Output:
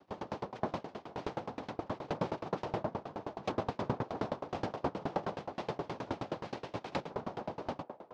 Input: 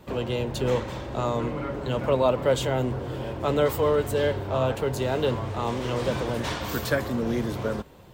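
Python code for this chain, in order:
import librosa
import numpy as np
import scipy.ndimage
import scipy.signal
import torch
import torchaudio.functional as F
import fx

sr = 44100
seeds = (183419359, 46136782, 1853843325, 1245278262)

p1 = fx.low_shelf(x, sr, hz=160.0, db=-3.0)
p2 = fx.notch(p1, sr, hz=580.0, q=12.0)
p3 = p2 + 0.55 * np.pad(p2, (int(7.1 * sr / 1000.0), 0))[:len(p2)]
p4 = fx.over_compress(p3, sr, threshold_db=-21.0, ratio=-0.5)
p5 = fx.noise_vocoder(p4, sr, seeds[0], bands=2)
p6 = fx.air_absorb(p5, sr, metres=270.0)
p7 = p6 + fx.echo_banded(p6, sr, ms=484, feedback_pct=47, hz=660.0, wet_db=-8, dry=0)
p8 = fx.tremolo_decay(p7, sr, direction='decaying', hz=9.5, depth_db=28)
y = F.gain(torch.from_numpy(p8), -4.0).numpy()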